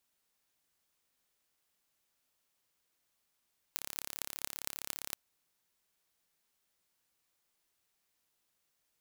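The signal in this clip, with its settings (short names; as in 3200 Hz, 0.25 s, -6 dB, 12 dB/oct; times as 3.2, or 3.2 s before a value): pulse train 35/s, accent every 8, -7.5 dBFS 1.40 s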